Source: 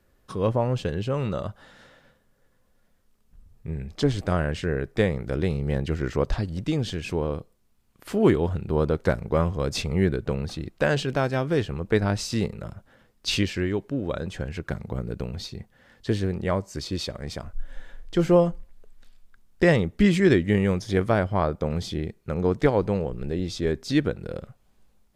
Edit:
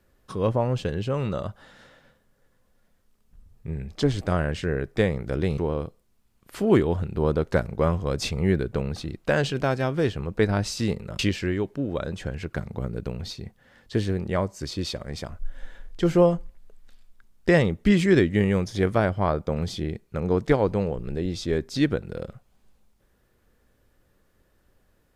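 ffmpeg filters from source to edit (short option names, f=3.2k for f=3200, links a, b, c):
-filter_complex "[0:a]asplit=3[a][b][c];[a]atrim=end=5.582[d];[b]atrim=start=7.108:end=12.722[e];[c]atrim=start=13.328[f];[d][e]acrossfade=d=0.004:c1=hsin:c2=hsin[g];[g][f]acrossfade=d=0.004:c1=hsin:c2=hsin"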